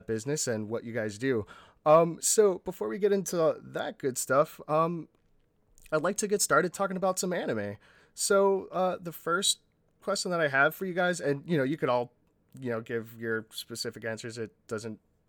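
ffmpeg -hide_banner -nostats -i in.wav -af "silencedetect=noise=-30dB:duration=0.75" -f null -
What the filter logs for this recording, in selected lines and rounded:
silence_start: 4.97
silence_end: 5.93 | silence_duration: 0.95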